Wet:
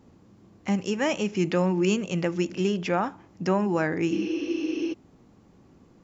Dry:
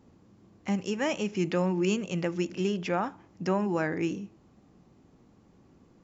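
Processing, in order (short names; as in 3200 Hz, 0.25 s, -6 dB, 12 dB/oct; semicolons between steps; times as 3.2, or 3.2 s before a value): spectral repair 4.14–4.91, 260–6400 Hz before; gain +3.5 dB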